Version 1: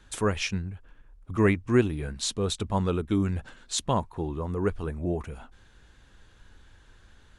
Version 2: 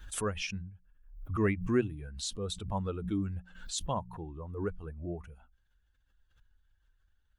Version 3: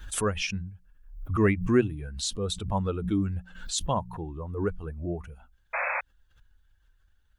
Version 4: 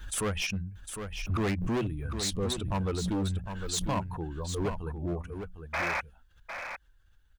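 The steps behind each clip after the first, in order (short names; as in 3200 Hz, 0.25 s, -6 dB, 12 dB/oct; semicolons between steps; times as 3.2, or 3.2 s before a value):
per-bin expansion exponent 1.5; notches 60/120/180 Hz; backwards sustainer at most 79 dB/s; gain -5.5 dB
painted sound noise, 5.73–6.01, 490–2600 Hz -35 dBFS; gain +6 dB
hard clip -26.5 dBFS, distortion -7 dB; on a send: echo 0.755 s -8 dB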